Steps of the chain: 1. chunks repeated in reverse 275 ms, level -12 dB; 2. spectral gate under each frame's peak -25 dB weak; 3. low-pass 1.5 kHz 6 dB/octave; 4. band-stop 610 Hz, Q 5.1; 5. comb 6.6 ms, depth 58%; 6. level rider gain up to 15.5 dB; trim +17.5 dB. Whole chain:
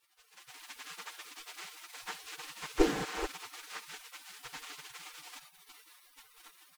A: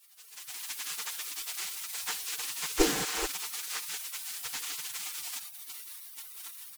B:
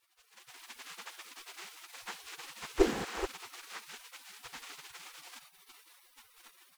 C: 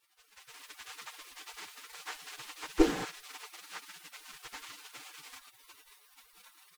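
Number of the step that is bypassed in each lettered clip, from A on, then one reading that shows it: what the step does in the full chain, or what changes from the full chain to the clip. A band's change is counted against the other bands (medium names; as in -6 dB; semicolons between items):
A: 3, 8 kHz band +12.5 dB; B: 5, 500 Hz band +3.0 dB; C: 1, 250 Hz band +4.0 dB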